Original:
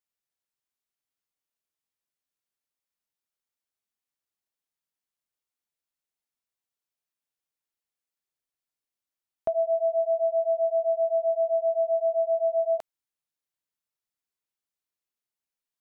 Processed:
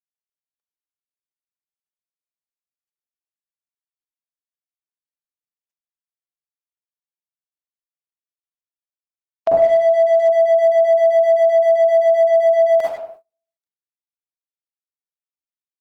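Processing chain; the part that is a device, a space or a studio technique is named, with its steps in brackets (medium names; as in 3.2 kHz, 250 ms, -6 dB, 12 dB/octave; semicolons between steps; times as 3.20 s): speakerphone in a meeting room (reverberation RT60 0.70 s, pre-delay 41 ms, DRR -6 dB; speakerphone echo 100 ms, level -8 dB; level rider gain up to 9 dB; gate -39 dBFS, range -29 dB; Opus 20 kbps 48 kHz)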